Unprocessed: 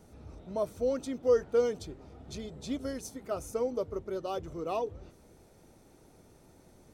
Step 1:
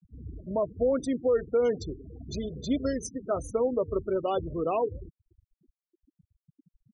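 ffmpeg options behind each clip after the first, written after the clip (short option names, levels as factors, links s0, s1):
-af "alimiter=level_in=1.12:limit=0.0631:level=0:latency=1:release=92,volume=0.891,afftfilt=real='re*gte(hypot(re,im),0.0112)':imag='im*gte(hypot(re,im),0.0112)':win_size=1024:overlap=0.75,volume=2.37"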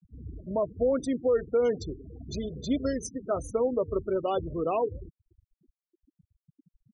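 -af anull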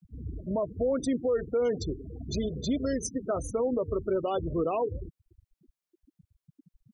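-af "alimiter=limit=0.0631:level=0:latency=1:release=76,volume=1.5"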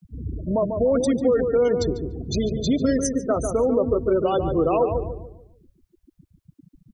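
-filter_complex "[0:a]asplit=2[s0][s1];[s1]adelay=145,lowpass=f=1200:p=1,volume=0.562,asplit=2[s2][s3];[s3]adelay=145,lowpass=f=1200:p=1,volume=0.39,asplit=2[s4][s5];[s5]adelay=145,lowpass=f=1200:p=1,volume=0.39,asplit=2[s6][s7];[s7]adelay=145,lowpass=f=1200:p=1,volume=0.39,asplit=2[s8][s9];[s9]adelay=145,lowpass=f=1200:p=1,volume=0.39[s10];[s0][s2][s4][s6][s8][s10]amix=inputs=6:normalize=0,volume=2.24"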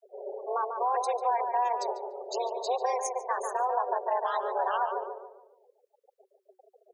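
-af "aeval=exprs='val(0)*sin(2*PI*120*n/s)':c=same,afreqshift=370,volume=0.531"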